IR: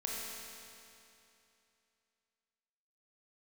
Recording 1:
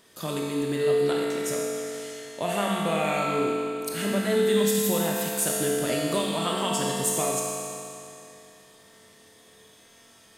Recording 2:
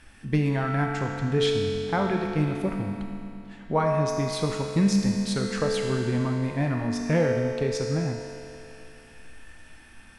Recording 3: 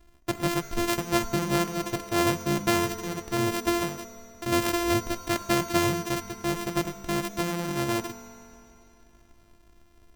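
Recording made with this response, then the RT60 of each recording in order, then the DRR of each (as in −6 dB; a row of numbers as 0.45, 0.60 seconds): 1; 2.8, 2.8, 2.8 seconds; −4.0, 0.5, 8.0 decibels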